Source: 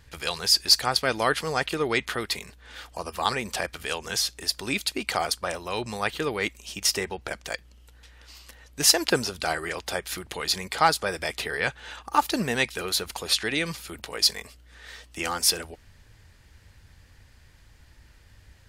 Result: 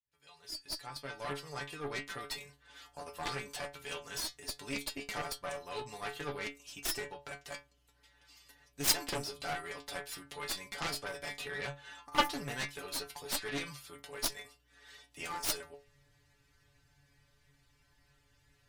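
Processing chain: opening faded in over 2.35 s; metallic resonator 140 Hz, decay 0.28 s, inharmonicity 0.002; added harmonics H 7 -11 dB, 8 -17 dB, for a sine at -13.5 dBFS

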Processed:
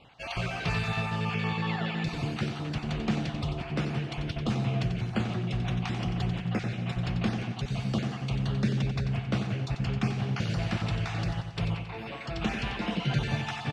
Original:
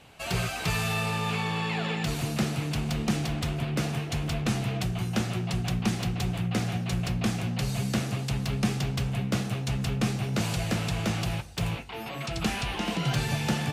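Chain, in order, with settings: random spectral dropouts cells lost 23%; LPF 4000 Hz 12 dB/oct; on a send: feedback echo 91 ms, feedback 56%, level -8.5 dB; on the sum: gain -1.5 dB

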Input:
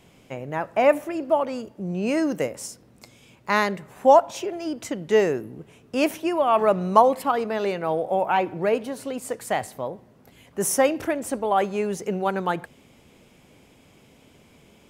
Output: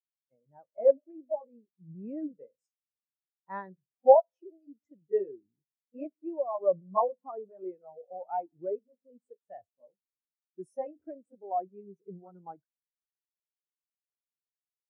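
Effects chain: repeated pitch sweeps -1.5 st, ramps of 0.973 s; spectral expander 2.5:1

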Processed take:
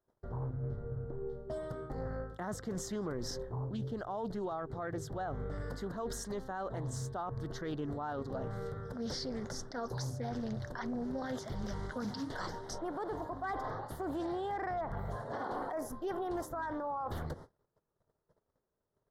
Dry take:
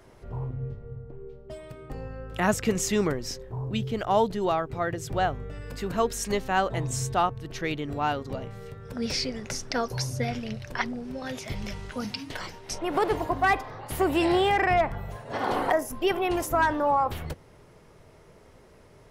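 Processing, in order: Butterworth band-stop 2500 Hz, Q 1.3; tone controls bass +2 dB, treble -9 dB; reverse; compressor 8:1, threshold -34 dBFS, peak gain reduction 16.5 dB; reverse; low shelf 210 Hz -6 dB; gate -50 dBFS, range -35 dB; limiter -34 dBFS, peak gain reduction 9.5 dB; Doppler distortion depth 0.23 ms; gain +4 dB

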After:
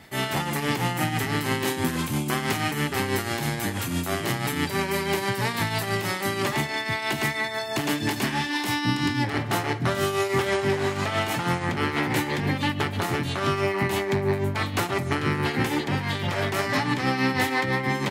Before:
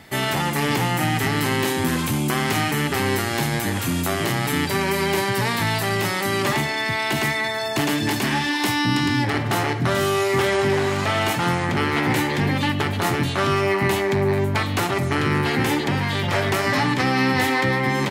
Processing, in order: tremolo triangle 6.1 Hz, depth 60%; gain -1.5 dB

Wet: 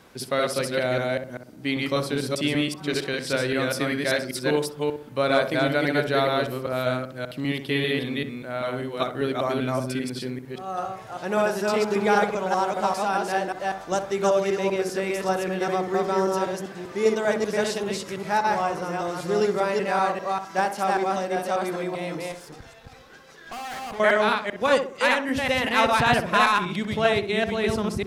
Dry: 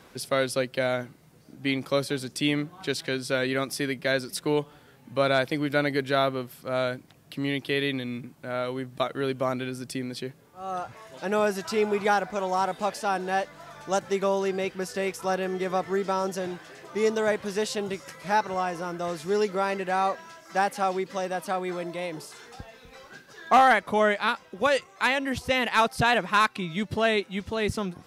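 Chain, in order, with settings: reverse delay 0.196 s, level -1 dB; 22.32–24 tube stage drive 34 dB, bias 0.7; darkening echo 63 ms, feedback 41%, low-pass 1200 Hz, level -7.5 dB

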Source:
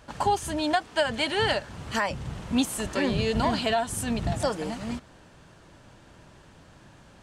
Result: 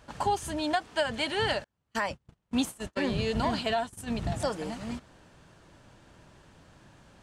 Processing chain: 1.64–4.14 gate -29 dBFS, range -38 dB; gain -3.5 dB

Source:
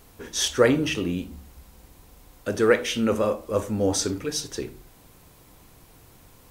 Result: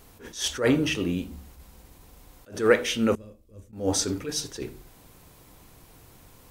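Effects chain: 3.15–3.73 passive tone stack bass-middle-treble 10-0-1; attack slew limiter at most 160 dB/s

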